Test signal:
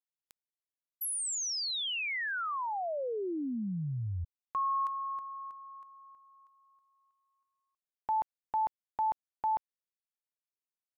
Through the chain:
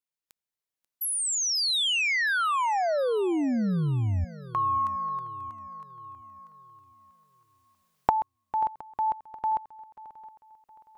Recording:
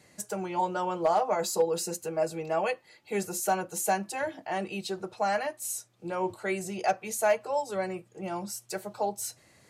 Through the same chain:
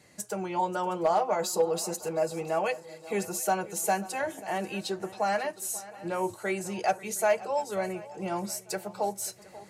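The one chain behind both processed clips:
camcorder AGC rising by 5.1 dB per second
feedback echo with a long and a short gap by turns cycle 716 ms, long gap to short 3 to 1, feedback 39%, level −18 dB

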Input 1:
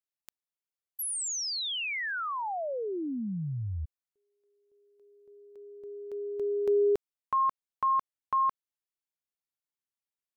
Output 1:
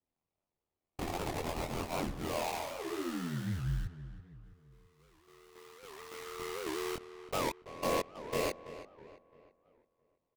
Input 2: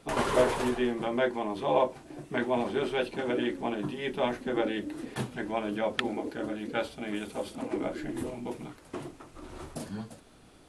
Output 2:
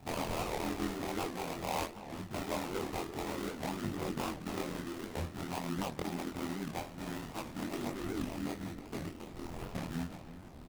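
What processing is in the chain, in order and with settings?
comb filter 1 ms, depth 68%
downward compressor 2 to 1, threshold −41 dBFS
sample-rate reduction 1,600 Hz, jitter 20%
hard clipping −30.5 dBFS
ring modulation 41 Hz
multi-voice chorus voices 2, 0.25 Hz, delay 22 ms, depth 1.4 ms
feedback echo with a low-pass in the loop 332 ms, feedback 44%, low-pass 3,100 Hz, level −13.5 dB
wow of a warped record 78 rpm, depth 250 cents
level +7 dB

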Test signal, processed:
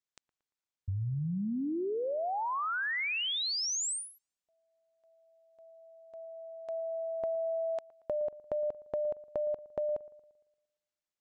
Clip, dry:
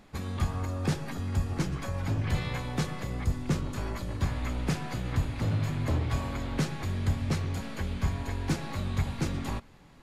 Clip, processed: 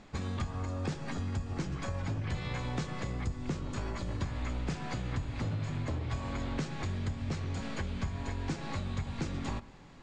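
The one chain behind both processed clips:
Butterworth low-pass 8,300 Hz 48 dB per octave
downward compressor, threshold −33 dBFS
on a send: delay with a low-pass on its return 115 ms, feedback 47%, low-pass 1,700 Hz, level −19.5 dB
on the sum: level +1.5 dB

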